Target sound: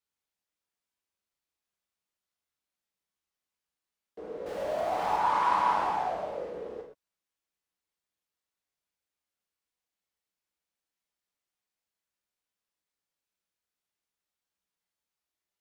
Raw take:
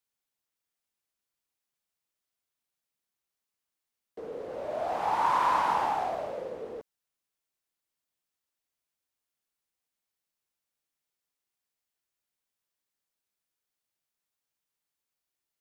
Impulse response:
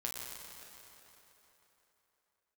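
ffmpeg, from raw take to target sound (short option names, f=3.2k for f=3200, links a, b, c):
-filter_complex "[0:a]asettb=1/sr,asplit=3[a][b][c];[a]atrim=end=4.464[d];[b]atrim=start=4.46:end=5.16,asetpts=PTS-STARTPTS,afade=t=in:d=0.004:c=qsin,afade=t=out:st=0.696:d=0.004:c=qsin,aeval=exprs='val(0)+0.5*0.015*sgn(val(0))':c=same[e];[c]atrim=start=5.156[f];[d][e]acrossfade=d=0.004:c1=hsin:c2=qsin[g];[g][f]acrossfade=d=0.004:c1=qsin:c2=hsin,highshelf=f=8.8k:g=-7.5[h];[1:a]atrim=start_sample=2205,afade=t=out:st=0.18:d=0.01,atrim=end_sample=8379[i];[h][i]afir=irnorm=-1:irlink=0"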